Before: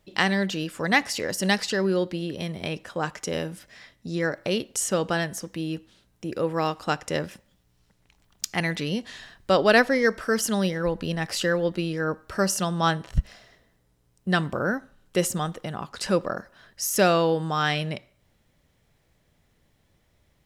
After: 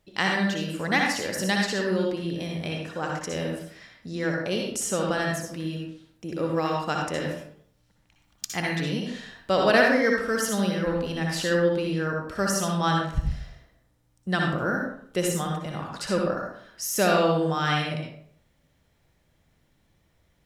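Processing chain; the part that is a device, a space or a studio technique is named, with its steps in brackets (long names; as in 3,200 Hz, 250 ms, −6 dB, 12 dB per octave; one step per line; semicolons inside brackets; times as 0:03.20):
bathroom (convolution reverb RT60 0.60 s, pre-delay 56 ms, DRR −0.5 dB)
level −3.5 dB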